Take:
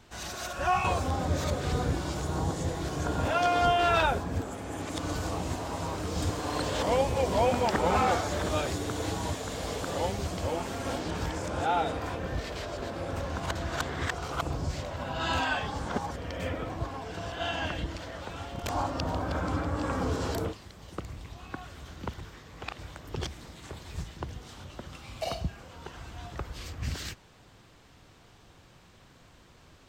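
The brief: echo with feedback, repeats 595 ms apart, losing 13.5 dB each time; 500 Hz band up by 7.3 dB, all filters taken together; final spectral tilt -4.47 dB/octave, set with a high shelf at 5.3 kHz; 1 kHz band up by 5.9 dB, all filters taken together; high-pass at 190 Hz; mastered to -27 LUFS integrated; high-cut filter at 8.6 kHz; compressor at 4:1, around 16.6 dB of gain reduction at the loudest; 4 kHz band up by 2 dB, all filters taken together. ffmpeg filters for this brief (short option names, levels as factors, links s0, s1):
-af "highpass=190,lowpass=8600,equalizer=f=500:t=o:g=7.5,equalizer=f=1000:t=o:g=5,equalizer=f=4000:t=o:g=5.5,highshelf=f=5300:g=-8,acompressor=threshold=0.0178:ratio=4,aecho=1:1:595|1190:0.211|0.0444,volume=3.35"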